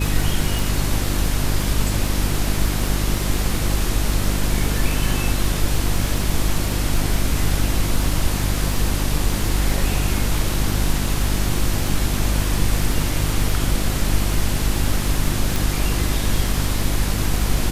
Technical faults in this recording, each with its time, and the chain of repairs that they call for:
surface crackle 24 per second −24 dBFS
mains hum 50 Hz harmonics 7 −23 dBFS
0:00.59: click
0:15.56: click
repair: click removal
hum removal 50 Hz, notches 7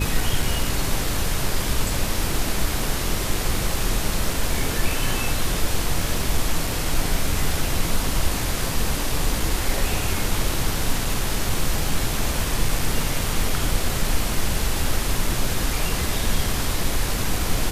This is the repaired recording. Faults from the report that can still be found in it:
none of them is left

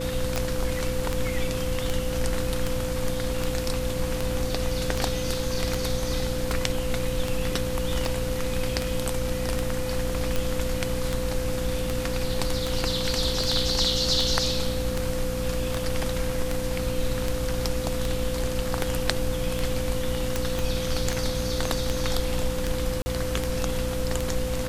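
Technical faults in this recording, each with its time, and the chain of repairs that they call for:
mains hum 60 Hz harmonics 5 −32 dBFS
scratch tick 78 rpm
whistle 510 Hz −30 dBFS
0:20.59: click
0:23.02–0:23.06: drop-out 40 ms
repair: click removal
hum removal 60 Hz, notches 5
notch filter 510 Hz, Q 30
repair the gap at 0:23.02, 40 ms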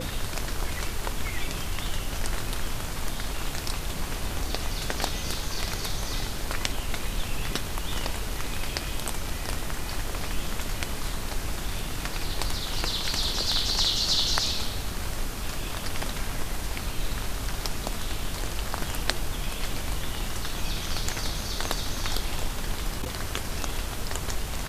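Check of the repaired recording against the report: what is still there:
0:20.59: click

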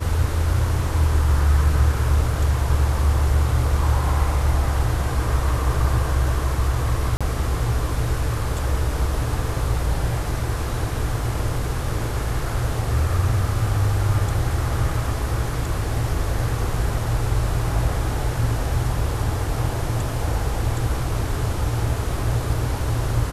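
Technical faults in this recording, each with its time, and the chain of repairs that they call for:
0:07.17–0:07.21: drop-out 36 ms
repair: repair the gap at 0:07.17, 36 ms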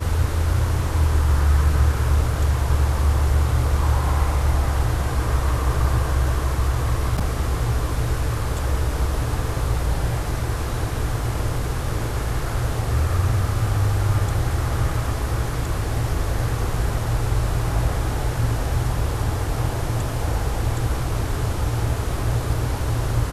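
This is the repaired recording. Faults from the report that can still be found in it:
none of them is left

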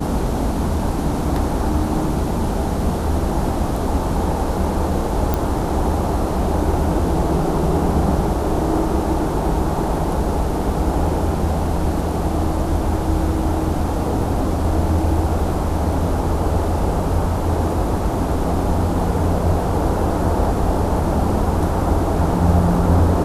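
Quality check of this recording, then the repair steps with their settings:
0:05.34: click −6 dBFS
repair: click removal

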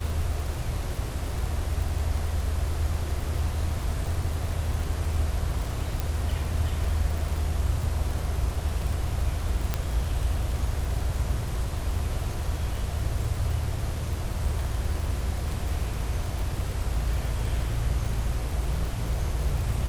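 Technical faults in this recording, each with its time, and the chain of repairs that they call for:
surface crackle 58 per second −31 dBFS
0:06.00: click
0:09.74: click −11 dBFS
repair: click removal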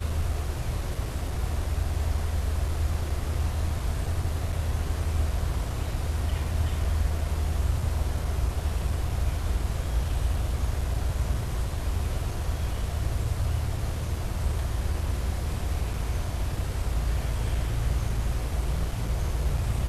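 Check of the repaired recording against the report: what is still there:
0:06.00: click

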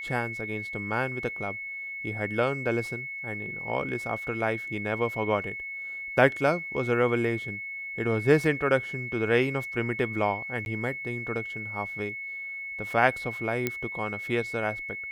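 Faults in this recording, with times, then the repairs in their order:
whistle 2,200 Hz −34 dBFS
0:10.65–0:10.66: drop-out 11 ms
0:13.67: click −12 dBFS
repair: click removal
notch filter 2,200 Hz, Q 30
repair the gap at 0:10.65, 11 ms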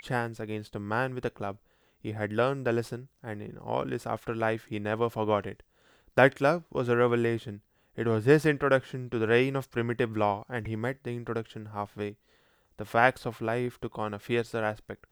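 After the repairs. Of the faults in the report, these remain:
none of them is left

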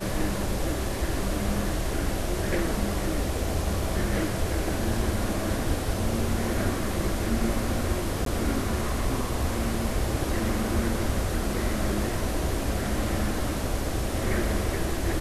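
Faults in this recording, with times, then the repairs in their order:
0:08.25–0:08.26: drop-out 13 ms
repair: repair the gap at 0:08.25, 13 ms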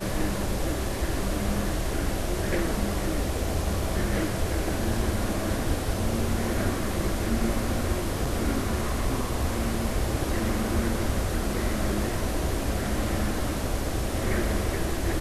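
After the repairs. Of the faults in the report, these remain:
none of them is left

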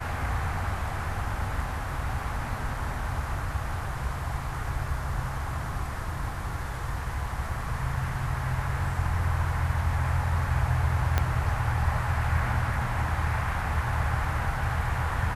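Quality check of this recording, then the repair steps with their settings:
0:11.18: click −10 dBFS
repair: click removal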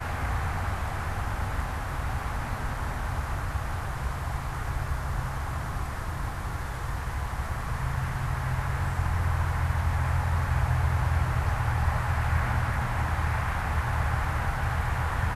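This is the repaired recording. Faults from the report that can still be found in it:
0:11.18: click

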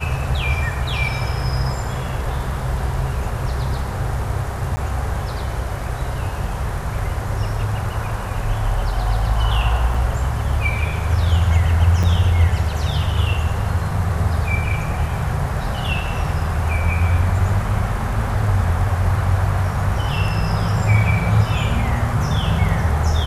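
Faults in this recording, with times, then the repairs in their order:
0:04.76–0:04.77: drop-out 10 ms
0:09.94: drop-out 4.5 ms
0:12.03–0:12.04: drop-out 5.8 ms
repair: repair the gap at 0:04.76, 10 ms
repair the gap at 0:09.94, 4.5 ms
repair the gap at 0:12.03, 5.8 ms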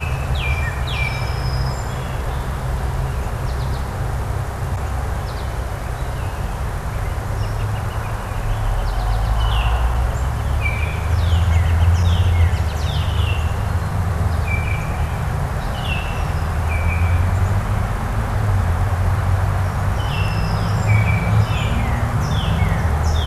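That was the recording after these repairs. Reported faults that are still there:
none of them is left

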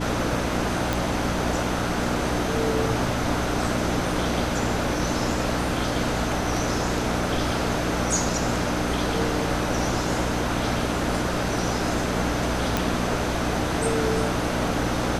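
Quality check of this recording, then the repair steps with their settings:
mains hum 60 Hz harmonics 5 −29 dBFS
0:00.93: click
0:12.77: click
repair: click removal
hum removal 60 Hz, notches 5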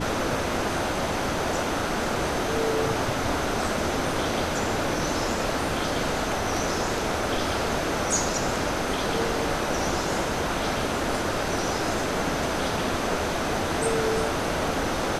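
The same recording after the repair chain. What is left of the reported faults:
0:12.77: click

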